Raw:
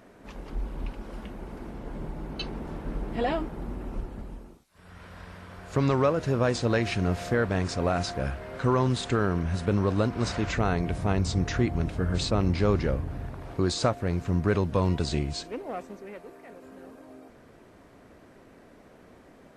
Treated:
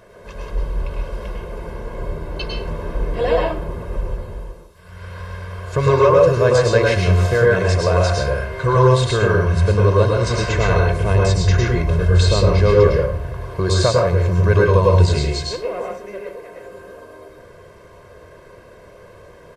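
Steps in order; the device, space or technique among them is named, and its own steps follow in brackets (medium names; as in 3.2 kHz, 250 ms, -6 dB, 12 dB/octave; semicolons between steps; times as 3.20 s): microphone above a desk (comb 1.9 ms, depth 86%; reverberation RT60 0.45 s, pre-delay 98 ms, DRR -1.5 dB); trim +4 dB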